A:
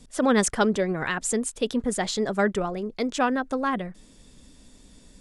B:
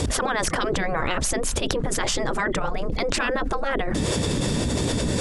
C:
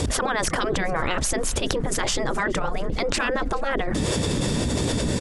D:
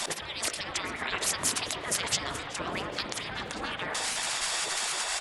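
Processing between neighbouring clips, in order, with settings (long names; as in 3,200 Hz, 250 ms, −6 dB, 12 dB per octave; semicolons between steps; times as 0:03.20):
gate on every frequency bin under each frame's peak −10 dB weak; spectral tilt −2.5 dB per octave; envelope flattener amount 100%; level +2 dB
repeating echo 424 ms, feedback 58%, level −24 dB
gate on every frequency bin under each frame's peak −20 dB weak; spring reverb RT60 3.4 s, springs 36/55 ms, chirp 25 ms, DRR 7 dB; highs frequency-modulated by the lows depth 0.15 ms; level +3.5 dB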